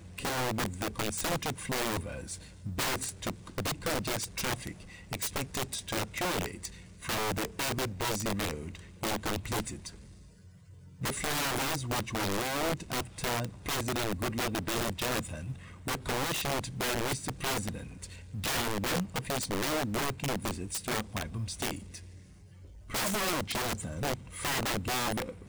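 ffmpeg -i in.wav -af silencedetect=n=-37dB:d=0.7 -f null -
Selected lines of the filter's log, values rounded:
silence_start: 9.89
silence_end: 11.01 | silence_duration: 1.12
silence_start: 21.97
silence_end: 22.90 | silence_duration: 0.93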